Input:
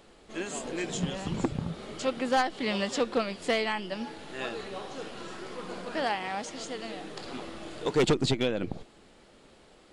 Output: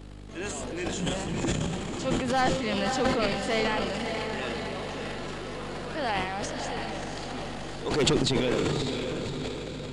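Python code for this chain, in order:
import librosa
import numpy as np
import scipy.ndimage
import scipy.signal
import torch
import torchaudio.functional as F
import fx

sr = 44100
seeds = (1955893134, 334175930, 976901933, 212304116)

y = fx.dmg_buzz(x, sr, base_hz=50.0, harmonics=6, level_db=-45.0, tilt_db=-3, odd_only=False)
y = fx.echo_diffused(y, sr, ms=580, feedback_pct=57, wet_db=-5.5)
y = fx.transient(y, sr, attack_db=-4, sustain_db=11)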